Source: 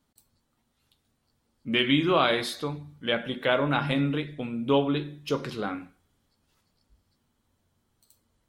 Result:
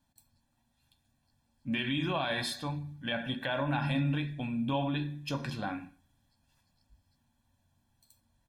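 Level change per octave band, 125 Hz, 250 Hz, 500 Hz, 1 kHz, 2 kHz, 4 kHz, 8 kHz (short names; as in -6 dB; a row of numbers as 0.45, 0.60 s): -1.0, -5.5, -11.0, -7.0, -6.0, -7.5, -2.0 dB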